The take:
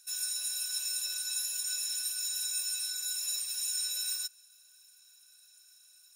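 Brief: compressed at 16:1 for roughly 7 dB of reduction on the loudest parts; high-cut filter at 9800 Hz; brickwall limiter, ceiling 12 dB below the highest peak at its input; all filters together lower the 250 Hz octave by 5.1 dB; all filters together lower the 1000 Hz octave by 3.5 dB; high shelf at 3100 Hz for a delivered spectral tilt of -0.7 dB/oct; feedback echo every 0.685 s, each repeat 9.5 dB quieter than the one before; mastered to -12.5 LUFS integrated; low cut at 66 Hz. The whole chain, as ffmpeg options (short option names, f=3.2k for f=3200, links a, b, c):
-af "highpass=66,lowpass=9.8k,equalizer=f=250:t=o:g=-6.5,equalizer=f=1k:t=o:g=-6,highshelf=f=3.1k:g=8,acompressor=threshold=-32dB:ratio=16,alimiter=level_in=11.5dB:limit=-24dB:level=0:latency=1,volume=-11.5dB,aecho=1:1:685|1370|2055|2740:0.335|0.111|0.0365|0.012,volume=29dB"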